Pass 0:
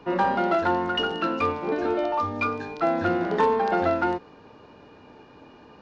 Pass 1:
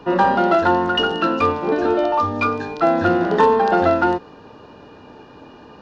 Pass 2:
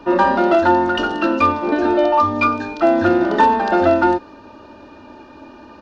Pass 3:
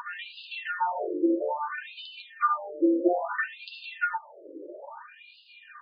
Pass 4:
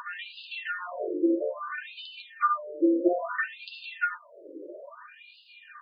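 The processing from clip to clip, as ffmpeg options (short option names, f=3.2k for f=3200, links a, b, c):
-af "bandreject=f=2.2k:w=6,volume=7dB"
-af "aecho=1:1:3.3:0.68"
-af "acompressor=mode=upward:threshold=-23dB:ratio=2.5,flanger=delay=8.3:depth=3.6:regen=-36:speed=0.76:shape=sinusoidal,afftfilt=real='re*between(b*sr/1024,390*pow(3600/390,0.5+0.5*sin(2*PI*0.6*pts/sr))/1.41,390*pow(3600/390,0.5+0.5*sin(2*PI*0.6*pts/sr))*1.41)':imag='im*between(b*sr/1024,390*pow(3600/390,0.5+0.5*sin(2*PI*0.6*pts/sr))/1.41,390*pow(3600/390,0.5+0.5*sin(2*PI*0.6*pts/sr))*1.41)':win_size=1024:overlap=0.75"
-af "asuperstop=centerf=830:order=8:qfactor=3.1"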